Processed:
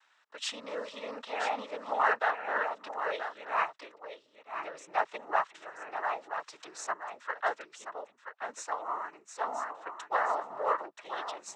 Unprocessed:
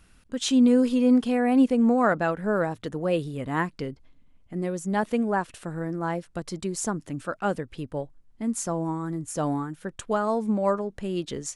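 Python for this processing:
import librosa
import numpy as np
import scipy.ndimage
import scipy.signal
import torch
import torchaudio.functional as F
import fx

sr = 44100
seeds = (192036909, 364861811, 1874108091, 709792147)

p1 = scipy.signal.sosfilt(scipy.signal.butter(4, 890.0, 'highpass', fs=sr, output='sos'), x)
p2 = fx.tilt_eq(p1, sr, slope=-4.5)
p3 = np.clip(p2, -10.0 ** (-24.5 / 20.0), 10.0 ** (-24.5 / 20.0))
p4 = p2 + (p3 * 10.0 ** (-8.0 / 20.0))
p5 = fx.noise_vocoder(p4, sr, seeds[0], bands=12)
y = p5 + 10.0 ** (-9.0 / 20.0) * np.pad(p5, (int(978 * sr / 1000.0), 0))[:len(p5)]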